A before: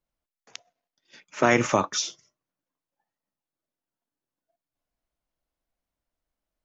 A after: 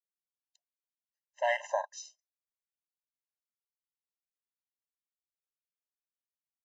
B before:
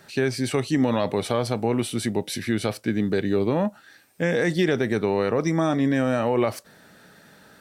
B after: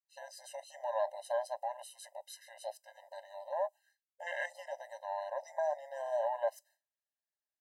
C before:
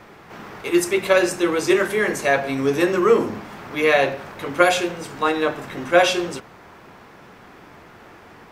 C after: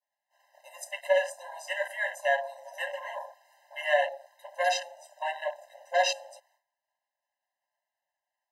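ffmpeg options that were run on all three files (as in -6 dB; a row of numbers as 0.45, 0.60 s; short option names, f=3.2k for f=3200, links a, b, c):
-filter_complex "[0:a]afwtdn=0.0501,bass=f=250:g=7,treble=f=4k:g=10,agate=range=-33dB:threshold=-47dB:ratio=3:detection=peak,asplit=2[a][b];[b]asoftclip=type=tanh:threshold=-10dB,volume=-10.5dB[c];[a][c]amix=inputs=2:normalize=0,adynamicequalizer=threshold=0.0224:dfrequency=2700:dqfactor=1.8:tfrequency=2700:tqfactor=1.8:attack=5:release=100:ratio=0.375:range=1.5:mode=cutabove:tftype=bell,afftfilt=real='re*eq(mod(floor(b*sr/1024/530),2),1)':imag='im*eq(mod(floor(b*sr/1024/530),2),1)':win_size=1024:overlap=0.75,volume=-8dB"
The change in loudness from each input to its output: -9.5, -15.0, -10.5 LU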